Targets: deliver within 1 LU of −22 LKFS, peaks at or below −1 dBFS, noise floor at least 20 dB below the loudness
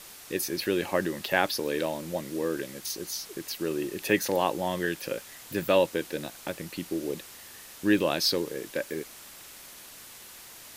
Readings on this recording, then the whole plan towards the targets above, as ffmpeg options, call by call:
background noise floor −48 dBFS; target noise floor −50 dBFS; integrated loudness −29.5 LKFS; sample peak −7.0 dBFS; target loudness −22.0 LKFS
→ -af "afftdn=noise_reduction=6:noise_floor=-48"
-af "volume=7.5dB,alimiter=limit=-1dB:level=0:latency=1"

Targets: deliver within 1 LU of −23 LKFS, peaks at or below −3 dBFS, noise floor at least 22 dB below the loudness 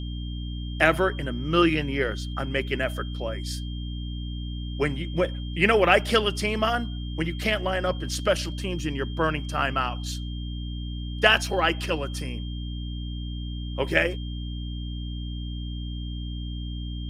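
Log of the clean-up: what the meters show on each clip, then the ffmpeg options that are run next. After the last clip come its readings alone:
mains hum 60 Hz; hum harmonics up to 300 Hz; level of the hum −30 dBFS; interfering tone 3,200 Hz; level of the tone −43 dBFS; integrated loudness −26.5 LKFS; sample peak −2.5 dBFS; target loudness −23.0 LKFS
→ -af "bandreject=frequency=60:width_type=h:width=6,bandreject=frequency=120:width_type=h:width=6,bandreject=frequency=180:width_type=h:width=6,bandreject=frequency=240:width_type=h:width=6,bandreject=frequency=300:width_type=h:width=6"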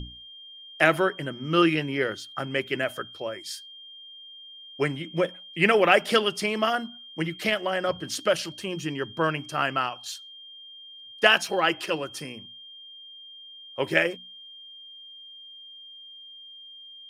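mains hum none found; interfering tone 3,200 Hz; level of the tone −43 dBFS
→ -af "bandreject=frequency=3200:width=30"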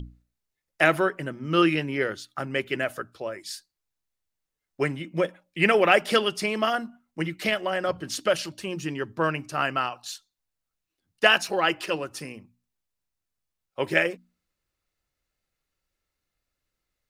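interfering tone none found; integrated loudness −25.5 LKFS; sample peak −2.5 dBFS; target loudness −23.0 LKFS
→ -af "volume=2.5dB,alimiter=limit=-3dB:level=0:latency=1"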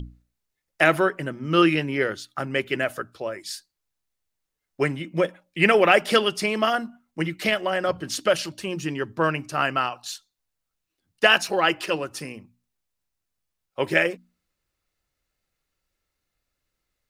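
integrated loudness −23.0 LKFS; sample peak −3.0 dBFS; background noise floor −82 dBFS

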